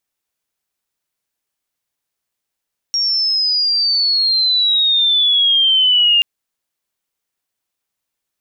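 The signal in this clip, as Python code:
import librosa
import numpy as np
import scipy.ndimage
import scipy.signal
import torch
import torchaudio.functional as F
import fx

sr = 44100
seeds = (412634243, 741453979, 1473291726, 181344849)

y = fx.chirp(sr, length_s=3.28, from_hz=5600.0, to_hz=2800.0, law='logarithmic', from_db=-14.0, to_db=-9.0)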